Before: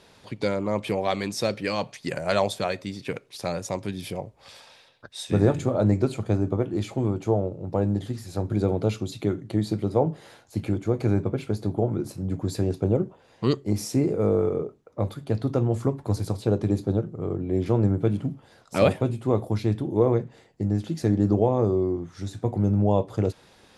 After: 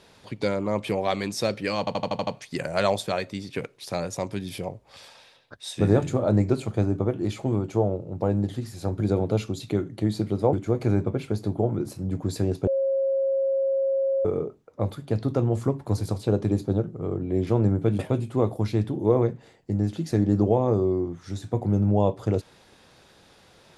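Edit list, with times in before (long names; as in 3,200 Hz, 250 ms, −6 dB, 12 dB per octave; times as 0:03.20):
0:01.79: stutter 0.08 s, 7 plays
0:10.05–0:10.72: remove
0:12.86–0:14.44: beep over 541 Hz −20.5 dBFS
0:18.18–0:18.90: remove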